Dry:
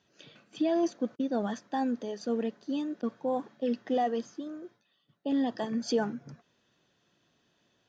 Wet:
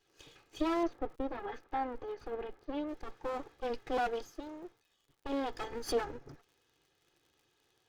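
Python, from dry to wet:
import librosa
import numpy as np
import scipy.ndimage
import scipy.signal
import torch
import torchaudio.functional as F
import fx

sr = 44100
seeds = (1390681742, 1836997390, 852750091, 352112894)

y = fx.lower_of_two(x, sr, delay_ms=2.4)
y = fx.lowpass(y, sr, hz=2400.0, slope=12, at=(0.83, 2.89))
y = fx.dmg_crackle(y, sr, seeds[0], per_s=75.0, level_db=-55.0)
y = y * 10.0 ** (-1.5 / 20.0)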